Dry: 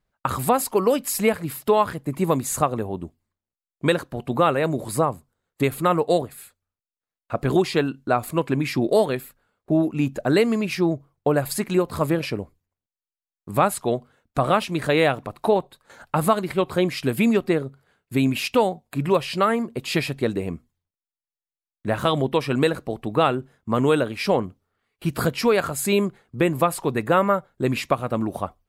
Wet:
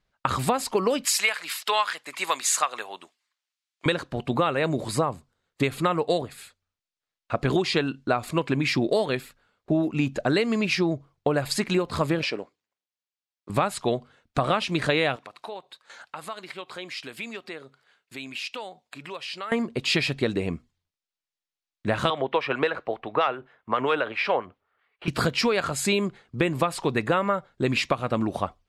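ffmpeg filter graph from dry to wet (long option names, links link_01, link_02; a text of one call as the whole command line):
ffmpeg -i in.wav -filter_complex "[0:a]asettb=1/sr,asplit=3[link_01][link_02][link_03];[link_01]atrim=end=1.054[link_04];[link_02]atrim=start=1.05:end=3.86,asetpts=PTS-STARTPTS,afade=type=in:duration=0.004:curve=qsin,afade=type=out:start_time=2.806:duration=0.004:curve=qsin,highpass=1300,acontrast=62[link_05];[link_03]atrim=start=3.856[link_06];[link_04][link_05]acrossfade=duration=0.004:curve1=hsin:curve2=qsin[link_07];[link_07][link_06]acrossfade=duration=0.004:curve1=qsin:curve2=hsin,asettb=1/sr,asplit=3[link_08][link_09][link_10];[link_08]atrim=end=12.234[link_11];[link_09]atrim=start=12.23:end=13.5,asetpts=PTS-STARTPTS,afade=type=in:duration=0.004:curve=qsin,afade=type=out:start_time=1.266:duration=0.004:curve=qsin,aeval=exprs='if(lt(val(0),0),0.708*val(0),val(0))':channel_layout=same,highpass=330,lowpass=8000[link_12];[link_10]atrim=start=13.496[link_13];[link_11][link_12]acrossfade=duration=0.004:curve1=hsin:curve2=qsin[link_14];[link_14][link_13]acrossfade=duration=0.004:curve1=qsin:curve2=hsin,asettb=1/sr,asplit=3[link_15][link_16][link_17];[link_15]atrim=end=15.164[link_18];[link_16]atrim=start=15.16:end=19.52,asetpts=PTS-STARTPTS,afade=type=in:duration=0.004:curve=qsin,afade=type=out:start_time=4.356:duration=0.004:curve=qsin,highpass=frequency=900:poles=1,acompressor=threshold=-44dB:ratio=2:attack=3.2:release=140:knee=1:detection=peak[link_19];[link_17]atrim=start=19.516[link_20];[link_18][link_19]acrossfade=duration=0.004:curve1=hsin:curve2=qsin[link_21];[link_21][link_20]acrossfade=duration=0.004:curve1=qsin:curve2=hsin,asettb=1/sr,asplit=3[link_22][link_23][link_24];[link_22]atrim=end=22.104[link_25];[link_23]atrim=start=22.1:end=25.08,asetpts=PTS-STARTPTS,afade=type=in:duration=0.004:curve=qsin,afade=type=out:start_time=2.976:duration=0.004:curve=qsin,acrossover=split=470 2900:gain=0.141 1 0.0794[link_26][link_27][link_28];[link_26][link_27][link_28]amix=inputs=3:normalize=0,acontrast=38,acrossover=split=1100[link_29][link_30];[link_29]aeval=exprs='val(0)*(1-0.5/2+0.5/2*cos(2*PI*7.5*n/s))':channel_layout=same[link_31];[link_30]aeval=exprs='val(0)*(1-0.5/2-0.5/2*cos(2*PI*7.5*n/s))':channel_layout=same[link_32];[link_31][link_32]amix=inputs=2:normalize=0[link_33];[link_24]atrim=start=25.076[link_34];[link_25][link_33]acrossfade=duration=0.004:curve1=hsin:curve2=qsin[link_35];[link_35][link_34]acrossfade=duration=0.004:curve1=qsin:curve2=hsin,lowpass=4600,highshelf=frequency=2500:gain=11.5,acompressor=threshold=-19dB:ratio=6" out.wav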